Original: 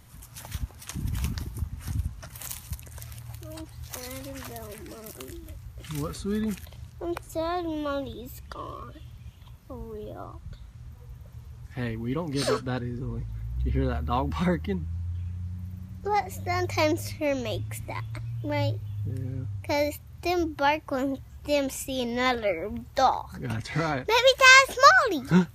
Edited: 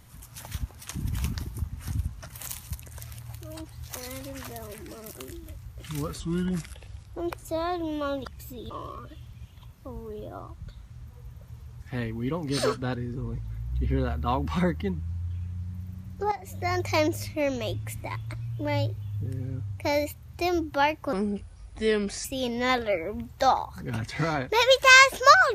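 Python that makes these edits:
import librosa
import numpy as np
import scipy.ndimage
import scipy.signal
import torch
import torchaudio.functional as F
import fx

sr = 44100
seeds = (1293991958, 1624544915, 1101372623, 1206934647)

y = fx.edit(x, sr, fx.speed_span(start_s=6.2, length_s=0.82, speed=0.84),
    fx.reverse_span(start_s=8.09, length_s=0.45),
    fx.fade_in_from(start_s=16.16, length_s=0.31, floor_db=-13.0),
    fx.speed_span(start_s=20.97, length_s=0.84, speed=0.75), tone=tone)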